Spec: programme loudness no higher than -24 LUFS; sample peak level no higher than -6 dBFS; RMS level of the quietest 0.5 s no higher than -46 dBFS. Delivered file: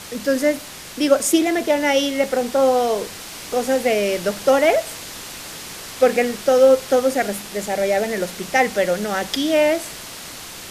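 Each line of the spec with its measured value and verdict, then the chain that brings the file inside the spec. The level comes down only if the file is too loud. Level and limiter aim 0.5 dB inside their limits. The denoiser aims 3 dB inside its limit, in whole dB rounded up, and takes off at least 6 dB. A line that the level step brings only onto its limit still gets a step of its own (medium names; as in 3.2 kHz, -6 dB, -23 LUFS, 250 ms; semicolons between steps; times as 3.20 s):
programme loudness -19.0 LUFS: fail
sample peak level -3.5 dBFS: fail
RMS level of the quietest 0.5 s -35 dBFS: fail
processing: noise reduction 9 dB, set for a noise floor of -35 dBFS; trim -5.5 dB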